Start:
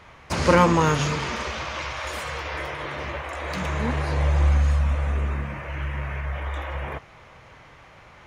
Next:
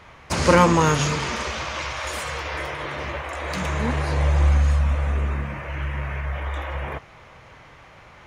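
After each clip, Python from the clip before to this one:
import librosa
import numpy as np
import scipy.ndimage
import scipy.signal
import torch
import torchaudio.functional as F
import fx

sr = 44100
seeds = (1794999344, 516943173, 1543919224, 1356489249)

y = fx.dynamic_eq(x, sr, hz=8500.0, q=0.86, threshold_db=-46.0, ratio=4.0, max_db=5)
y = F.gain(torch.from_numpy(y), 1.5).numpy()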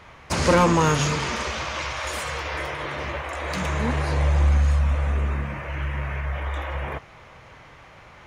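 y = 10.0 ** (-9.5 / 20.0) * np.tanh(x / 10.0 ** (-9.5 / 20.0))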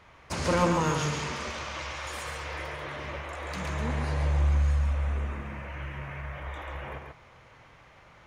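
y = x + 10.0 ** (-5.0 / 20.0) * np.pad(x, (int(138 * sr / 1000.0), 0))[:len(x)]
y = F.gain(torch.from_numpy(y), -8.5).numpy()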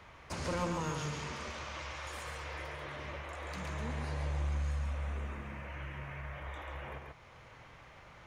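y = fx.band_squash(x, sr, depth_pct=40)
y = F.gain(torch.from_numpy(y), -7.5).numpy()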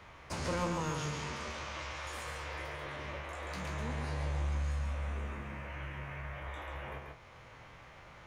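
y = fx.spec_trails(x, sr, decay_s=0.3)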